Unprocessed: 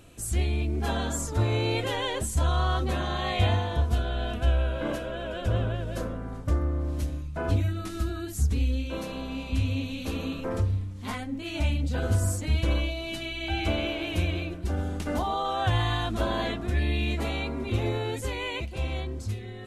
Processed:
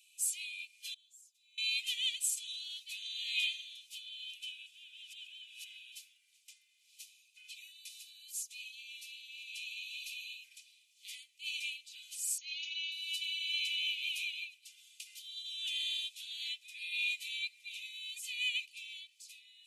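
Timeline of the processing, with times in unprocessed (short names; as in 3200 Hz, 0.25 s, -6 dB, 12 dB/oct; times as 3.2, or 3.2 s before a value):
0.94–1.58 passive tone stack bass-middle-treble 10-0-1
4.66–5.92 reverse
12.38–12.92 brick-wall FIR low-pass 6900 Hz
whole clip: Chebyshev high-pass 2400 Hz, order 6; comb 2 ms, depth 47%; upward expander 1.5:1, over -46 dBFS; gain +2 dB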